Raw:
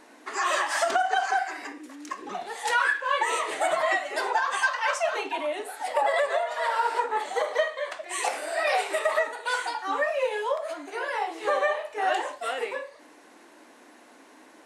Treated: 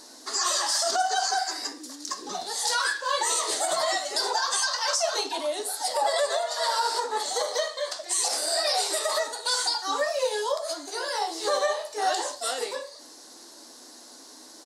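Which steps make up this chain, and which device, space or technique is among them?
over-bright horn tweeter (resonant high shelf 3.4 kHz +11.5 dB, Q 3; peak limiter -16 dBFS, peak gain reduction 9.5 dB); doubling 12 ms -11 dB

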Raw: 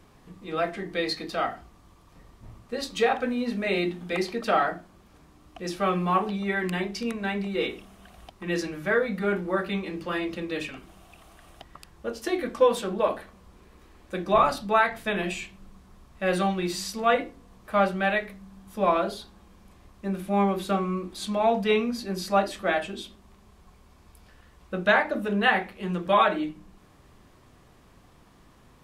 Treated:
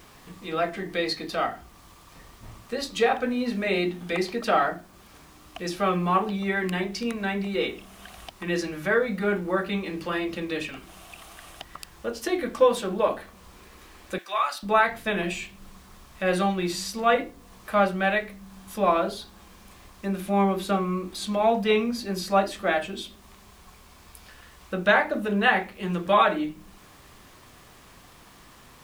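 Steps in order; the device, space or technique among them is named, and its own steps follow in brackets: noise-reduction cassette on a plain deck (tape noise reduction on one side only encoder only; wow and flutter 20 cents; white noise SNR 36 dB); 14.18–14.63 s: high-pass 1.3 kHz 12 dB/octave; trim +1 dB

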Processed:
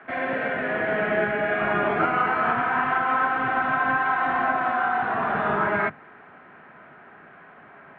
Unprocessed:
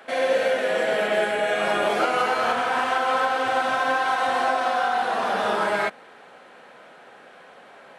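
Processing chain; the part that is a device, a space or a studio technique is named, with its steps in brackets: peaking EQ 500 Hz -6 dB 0.2 oct; sub-octave bass pedal (octave divider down 1 oct, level -6 dB; cabinet simulation 73–2100 Hz, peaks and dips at 150 Hz +5 dB, 530 Hz -9 dB, 820 Hz -5 dB); trim +2.5 dB

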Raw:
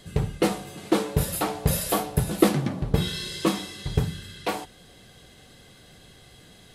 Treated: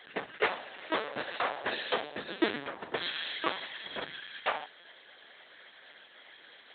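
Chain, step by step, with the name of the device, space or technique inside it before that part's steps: 1.72–2.64 s: fifteen-band graphic EQ 250 Hz +9 dB, 1 kHz -9 dB, 4 kHz +4 dB; talking toy (LPC vocoder at 8 kHz pitch kept; high-pass 660 Hz 12 dB/octave; peaking EQ 1.7 kHz +6.5 dB 0.46 oct)

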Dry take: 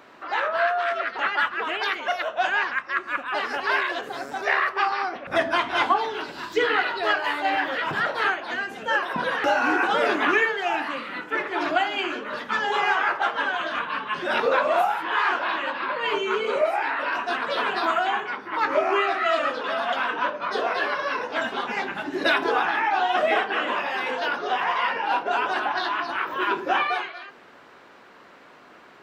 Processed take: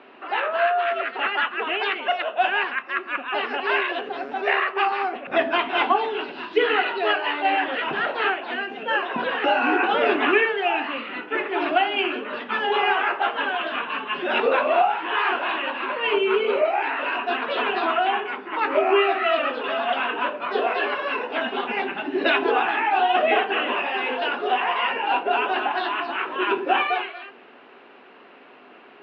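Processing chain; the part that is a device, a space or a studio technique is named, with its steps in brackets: kitchen radio (cabinet simulation 190–3700 Hz, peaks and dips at 250 Hz +7 dB, 400 Hz +8 dB, 740 Hz +5 dB, 2.7 kHz +9 dB); trim -1.5 dB

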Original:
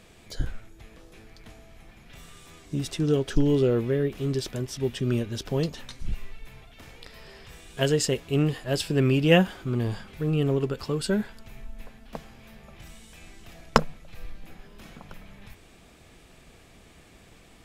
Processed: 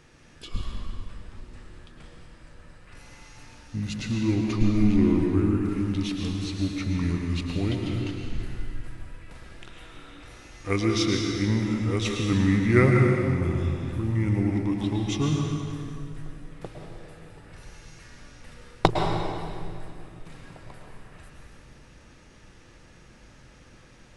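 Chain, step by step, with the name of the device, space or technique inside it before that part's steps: slowed and reverbed (tape speed -27%; reverberation RT60 2.3 s, pre-delay 102 ms, DRR 1 dB); trim -2 dB

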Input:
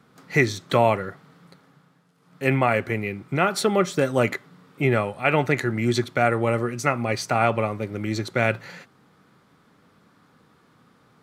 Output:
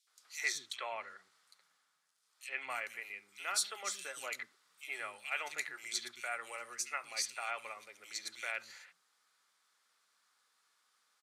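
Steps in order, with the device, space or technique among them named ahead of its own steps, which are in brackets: 0.67–2.70 s: low-pass that closes with the level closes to 2.7 kHz, closed at -14 dBFS; high-pass 740 Hz 6 dB/octave; piezo pickup straight into a mixer (low-pass 8.7 kHz 12 dB/octave; differentiator); three bands offset in time highs, mids, lows 70/190 ms, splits 290/3000 Hz

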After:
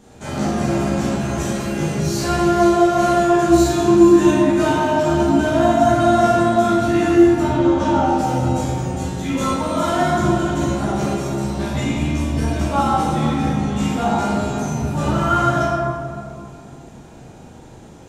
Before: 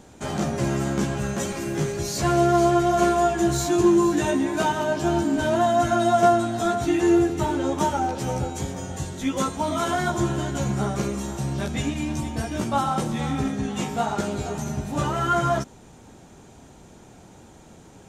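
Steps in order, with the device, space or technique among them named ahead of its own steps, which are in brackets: 7.42–8.05 s: low-pass 5.1 kHz 12 dB/octave; tunnel (flutter echo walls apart 6.6 m, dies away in 0.25 s; reverberation RT60 2.3 s, pre-delay 10 ms, DRR -7 dB); trim -3 dB

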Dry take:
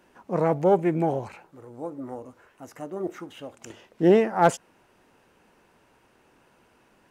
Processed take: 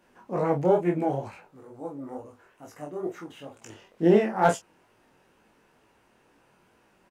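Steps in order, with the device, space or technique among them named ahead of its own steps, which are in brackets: double-tracked vocal (doubling 28 ms -6 dB; chorus 2.2 Hz, delay 17.5 ms, depth 5.3 ms)

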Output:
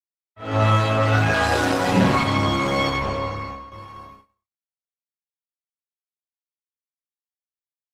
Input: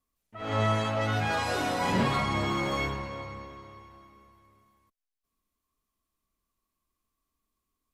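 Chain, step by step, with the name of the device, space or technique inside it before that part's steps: 3.29–3.72 s: gate -43 dBFS, range -10 dB; speakerphone in a meeting room (reverberation RT60 0.65 s, pre-delay 15 ms, DRR -2.5 dB; level rider gain up to 11 dB; gate -37 dBFS, range -59 dB; trim -3.5 dB; Opus 16 kbps 48 kHz)

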